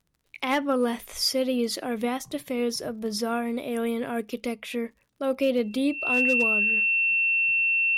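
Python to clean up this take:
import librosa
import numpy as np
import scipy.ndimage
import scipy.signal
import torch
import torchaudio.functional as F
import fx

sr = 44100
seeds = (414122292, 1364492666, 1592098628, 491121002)

y = fx.fix_declip(x, sr, threshold_db=-15.5)
y = fx.fix_declick_ar(y, sr, threshold=6.5)
y = fx.notch(y, sr, hz=2700.0, q=30.0)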